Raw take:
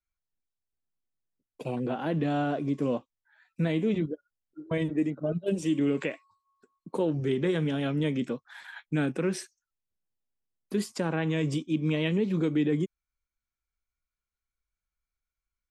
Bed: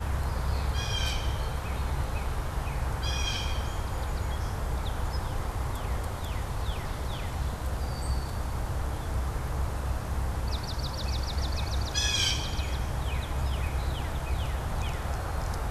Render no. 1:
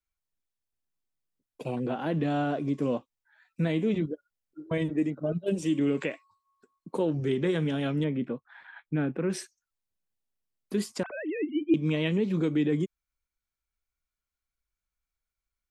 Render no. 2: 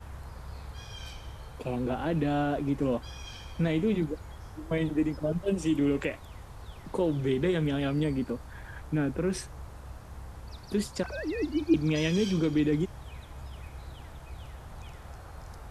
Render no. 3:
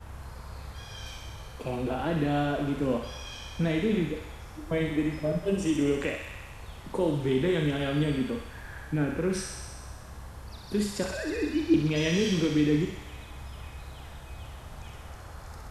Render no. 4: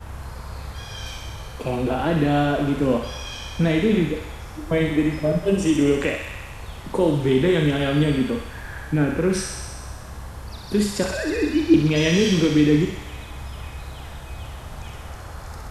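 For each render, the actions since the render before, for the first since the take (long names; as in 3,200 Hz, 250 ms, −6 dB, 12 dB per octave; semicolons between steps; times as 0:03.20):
0:08.04–0:09.30: high-frequency loss of the air 490 metres; 0:11.03–0:11.74: three sine waves on the formant tracks
mix in bed −13 dB
delay with a high-pass on its return 64 ms, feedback 77%, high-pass 1,400 Hz, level −4 dB; four-comb reverb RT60 0.41 s, combs from 27 ms, DRR 5.5 dB
level +7.5 dB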